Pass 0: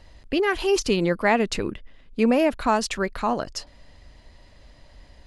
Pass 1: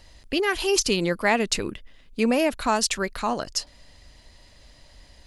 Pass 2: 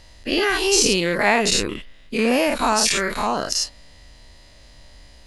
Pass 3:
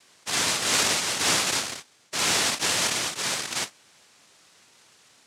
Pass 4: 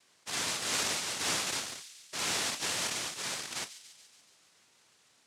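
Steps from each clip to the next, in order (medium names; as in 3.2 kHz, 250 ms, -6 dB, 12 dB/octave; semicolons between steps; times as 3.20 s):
treble shelf 3.4 kHz +12 dB; trim -2.5 dB
every event in the spectrogram widened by 120 ms; trim -1 dB
noise-vocoded speech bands 1; trim -5.5 dB
feedback echo behind a high-pass 142 ms, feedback 62%, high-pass 3 kHz, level -12 dB; trim -9 dB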